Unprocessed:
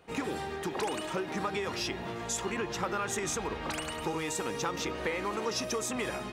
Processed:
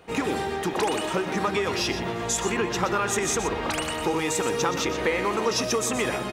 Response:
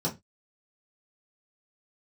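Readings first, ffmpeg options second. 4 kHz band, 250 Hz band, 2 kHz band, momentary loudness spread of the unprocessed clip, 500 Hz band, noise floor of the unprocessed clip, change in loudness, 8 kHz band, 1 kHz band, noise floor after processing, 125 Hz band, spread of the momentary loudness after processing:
+7.5 dB, +8.0 dB, +8.0 dB, 3 LU, +8.5 dB, −39 dBFS, +8.0 dB, +8.0 dB, +8.0 dB, −31 dBFS, +7.5 dB, 3 LU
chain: -filter_complex "[0:a]aecho=1:1:123:0.316,asplit=2[link_01][link_02];[1:a]atrim=start_sample=2205[link_03];[link_02][link_03]afir=irnorm=-1:irlink=0,volume=-28.5dB[link_04];[link_01][link_04]amix=inputs=2:normalize=0,volume=7.5dB"

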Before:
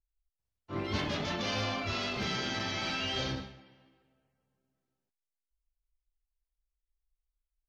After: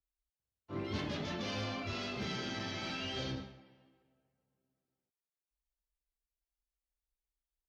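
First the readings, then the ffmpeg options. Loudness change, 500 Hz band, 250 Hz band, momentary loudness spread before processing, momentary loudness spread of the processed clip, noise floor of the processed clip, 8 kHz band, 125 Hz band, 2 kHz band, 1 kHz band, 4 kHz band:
−5.5 dB, −4.5 dB, −3.0 dB, 7 LU, 5 LU, below −85 dBFS, −7.0 dB, −4.0 dB, −6.5 dB, −7.0 dB, −6.5 dB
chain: -filter_complex "[0:a]highpass=frequency=69:poles=1,acrossover=split=600|770[link_01][link_02][link_03];[link_02]acompressor=threshold=-58dB:ratio=6[link_04];[link_03]flanger=delay=7.2:depth=3.8:regen=71:speed=0.91:shape=sinusoidal[link_05];[link_01][link_04][link_05]amix=inputs=3:normalize=0,asoftclip=type=tanh:threshold=-22.5dB,volume=-2dB"

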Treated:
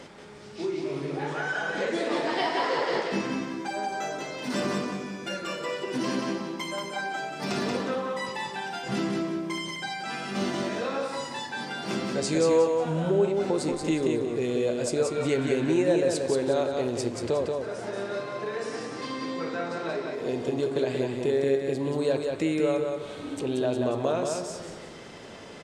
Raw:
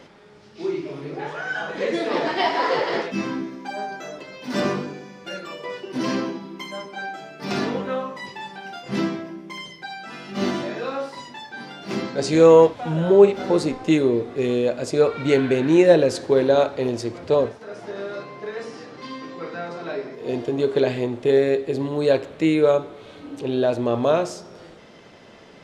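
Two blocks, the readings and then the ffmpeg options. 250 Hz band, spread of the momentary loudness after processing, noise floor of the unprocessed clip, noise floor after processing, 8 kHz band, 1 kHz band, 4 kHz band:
−5.0 dB, 9 LU, −47 dBFS, −43 dBFS, +2.0 dB, −4.0 dB, −2.0 dB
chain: -af "equalizer=frequency=8400:width=1.8:gain=9.5,acompressor=threshold=-33dB:ratio=2,aecho=1:1:182|364|546|728:0.631|0.202|0.0646|0.0207,volume=1.5dB"

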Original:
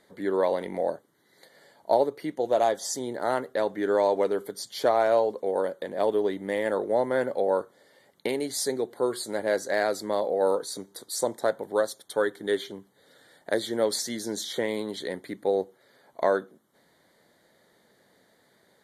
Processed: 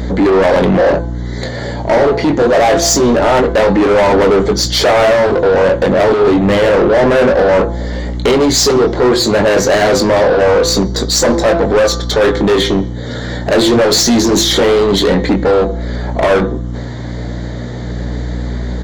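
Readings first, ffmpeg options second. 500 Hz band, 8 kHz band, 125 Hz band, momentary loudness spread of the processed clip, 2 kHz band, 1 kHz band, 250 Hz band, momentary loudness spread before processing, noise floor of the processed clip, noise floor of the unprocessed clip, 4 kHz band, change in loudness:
+15.5 dB, +18.5 dB, +28.5 dB, 12 LU, +18.0 dB, +14.5 dB, +20.5 dB, 8 LU, −22 dBFS, −64 dBFS, +21.5 dB, +16.0 dB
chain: -filter_complex "[0:a]lowshelf=frequency=480:gain=10.5,asplit=2[link_01][link_02];[link_02]adelay=21,volume=-8dB[link_03];[link_01][link_03]amix=inputs=2:normalize=0,bandreject=frequency=169:width_type=h:width=4,bandreject=frequency=338:width_type=h:width=4,bandreject=frequency=507:width_type=h:width=4,bandreject=frequency=676:width_type=h:width=4,bandreject=frequency=845:width_type=h:width=4,bandreject=frequency=1014:width_type=h:width=4,bandreject=frequency=1183:width_type=h:width=4,bandreject=frequency=1352:width_type=h:width=4,bandreject=frequency=1521:width_type=h:width=4,bandreject=frequency=1690:width_type=h:width=4,bandreject=frequency=1859:width_type=h:width=4,bandreject=frequency=2028:width_type=h:width=4,bandreject=frequency=2197:width_type=h:width=4,bandreject=frequency=2366:width_type=h:width=4,bandreject=frequency=2535:width_type=h:width=4,bandreject=frequency=2704:width_type=h:width=4,bandreject=frequency=2873:width_type=h:width=4,bandreject=frequency=3042:width_type=h:width=4,bandreject=frequency=3211:width_type=h:width=4,bandreject=frequency=3380:width_type=h:width=4,bandreject=frequency=3549:width_type=h:width=4,bandreject=frequency=3718:width_type=h:width=4,bandreject=frequency=3887:width_type=h:width=4,bandreject=frequency=4056:width_type=h:width=4,bandreject=frequency=4225:width_type=h:width=4,bandreject=frequency=4394:width_type=h:width=4,bandreject=frequency=4563:width_type=h:width=4,bandreject=frequency=4732:width_type=h:width=4,bandreject=frequency=4901:width_type=h:width=4,bandreject=frequency=5070:width_type=h:width=4,bandreject=frequency=5239:width_type=h:width=4,bandreject=frequency=5408:width_type=h:width=4,bandreject=frequency=5577:width_type=h:width=4,bandreject=frequency=5746:width_type=h:width=4,bandreject=frequency=5915:width_type=h:width=4,bandreject=frequency=6084:width_type=h:width=4,aresample=16000,aresample=44100,apsyclip=24dB,asplit=2[link_04][link_05];[link_05]acompressor=threshold=-21dB:ratio=4,volume=0.5dB[link_06];[link_04][link_06]amix=inputs=2:normalize=0,aeval=exprs='val(0)+0.141*(sin(2*PI*60*n/s)+sin(2*PI*2*60*n/s)/2+sin(2*PI*3*60*n/s)/3+sin(2*PI*4*60*n/s)/4+sin(2*PI*5*60*n/s)/5)':channel_layout=same,acontrast=66,flanger=delay=3.8:depth=5:regen=-77:speed=0.26:shape=sinusoidal,volume=-2.5dB"

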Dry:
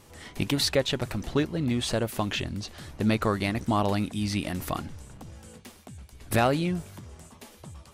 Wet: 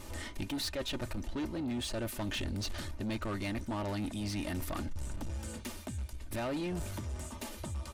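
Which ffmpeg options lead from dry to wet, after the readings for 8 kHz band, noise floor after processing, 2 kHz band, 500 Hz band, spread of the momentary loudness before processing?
−6.0 dB, −47 dBFS, −9.0 dB, −11.0 dB, 22 LU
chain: -af "lowshelf=frequency=61:gain=10.5,aecho=1:1:3.3:0.58,areverse,acompressor=threshold=-34dB:ratio=6,areverse,asoftclip=type=tanh:threshold=-36dB,volume=4.5dB"

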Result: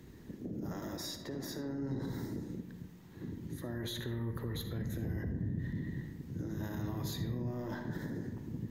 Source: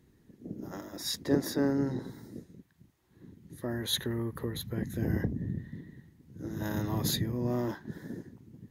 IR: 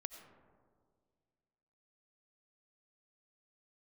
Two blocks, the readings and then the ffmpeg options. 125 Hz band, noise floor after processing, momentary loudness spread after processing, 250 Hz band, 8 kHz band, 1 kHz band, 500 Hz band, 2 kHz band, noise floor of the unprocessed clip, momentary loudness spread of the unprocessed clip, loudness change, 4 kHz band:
−2.5 dB, −53 dBFS, 7 LU, −5.5 dB, −9.5 dB, −6.0 dB, −8.0 dB, −5.0 dB, −65 dBFS, 18 LU, −6.5 dB, −9.5 dB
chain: -filter_complex "[0:a]equalizer=frequency=10000:width_type=o:width=0.28:gain=-8,areverse,acompressor=threshold=-38dB:ratio=6,areverse,alimiter=level_in=13.5dB:limit=-24dB:level=0:latency=1:release=48,volume=-13.5dB,acrossover=split=150[link_01][link_02];[link_02]acompressor=threshold=-51dB:ratio=3[link_03];[link_01][link_03]amix=inputs=2:normalize=0[link_04];[1:a]atrim=start_sample=2205,asetrate=66150,aresample=44100[link_05];[link_04][link_05]afir=irnorm=-1:irlink=0,volume=17.5dB"

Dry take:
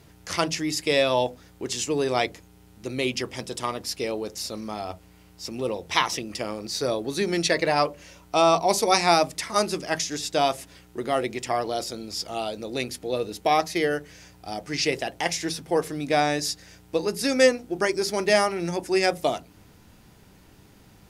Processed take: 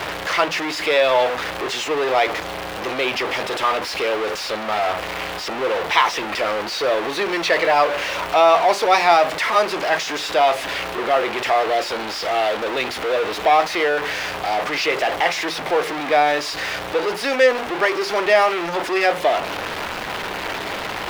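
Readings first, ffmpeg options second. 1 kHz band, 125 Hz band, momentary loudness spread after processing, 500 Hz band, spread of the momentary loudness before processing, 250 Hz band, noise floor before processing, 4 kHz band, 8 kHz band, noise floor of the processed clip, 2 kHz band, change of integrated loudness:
+8.0 dB, −4.0 dB, 9 LU, +5.5 dB, 12 LU, −0.5 dB, −53 dBFS, +5.0 dB, −2.0 dB, −29 dBFS, +9.0 dB, +5.5 dB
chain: -filter_complex "[0:a]aeval=exprs='val(0)+0.5*0.126*sgn(val(0))':channel_layout=same,acrossover=split=440 3700:gain=0.1 1 0.1[link_01][link_02][link_03];[link_01][link_02][link_03]amix=inputs=3:normalize=0,volume=4dB"

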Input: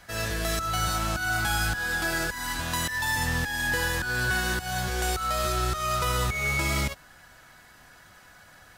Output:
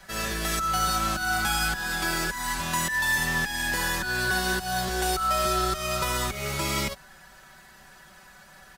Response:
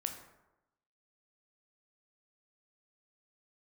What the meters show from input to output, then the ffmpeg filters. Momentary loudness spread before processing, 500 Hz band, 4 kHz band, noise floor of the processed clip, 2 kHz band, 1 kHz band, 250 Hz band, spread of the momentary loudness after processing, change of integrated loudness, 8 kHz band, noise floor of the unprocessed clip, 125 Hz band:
3 LU, +1.0 dB, +1.5 dB, −52 dBFS, +0.5 dB, +2.5 dB, +1.5 dB, 5 LU, +1.0 dB, +2.0 dB, −53 dBFS, −3.5 dB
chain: -filter_complex "[0:a]aecho=1:1:5.2:0.78,acrossover=split=260|3600[link_01][link_02][link_03];[link_01]asoftclip=type=tanh:threshold=-30dB[link_04];[link_04][link_02][link_03]amix=inputs=3:normalize=0"

